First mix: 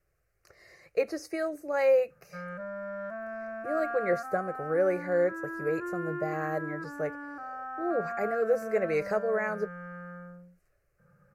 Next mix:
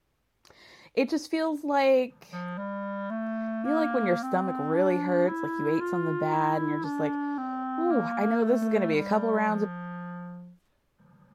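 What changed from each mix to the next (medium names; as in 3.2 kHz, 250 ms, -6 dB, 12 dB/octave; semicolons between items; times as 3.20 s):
master: remove static phaser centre 930 Hz, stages 6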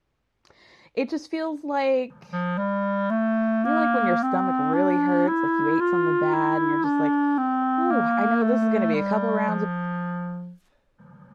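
speech: add distance through air 65 m; background +9.0 dB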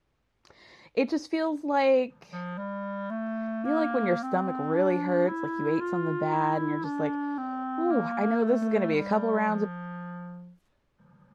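background -9.5 dB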